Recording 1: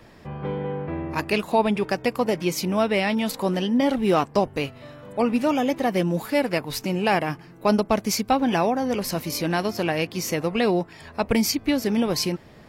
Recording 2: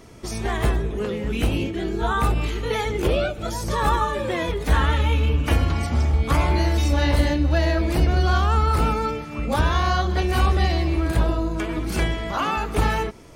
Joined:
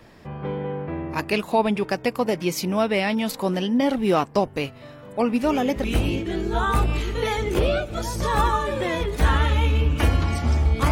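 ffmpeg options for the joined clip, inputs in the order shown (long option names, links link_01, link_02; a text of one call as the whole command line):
ffmpeg -i cue0.wav -i cue1.wav -filter_complex "[1:a]asplit=2[link_01][link_02];[0:a]apad=whole_dur=10.91,atrim=end=10.91,atrim=end=5.842[link_03];[link_02]atrim=start=1.318:end=6.39[link_04];[link_01]atrim=start=0.91:end=1.32,asetpts=PTS-STARTPTS,volume=-6.5dB,afade=type=in:duration=0.004:curve=hsin,afade=type=out:start_time=0.406:duration=0.004:curve=hsin,adelay=5430[link_05];[link_03][link_04]acrossfade=duration=0.004:curve1=hsin:curve2=hsin[link_06];[link_06][link_05]amix=inputs=2:normalize=0" out.wav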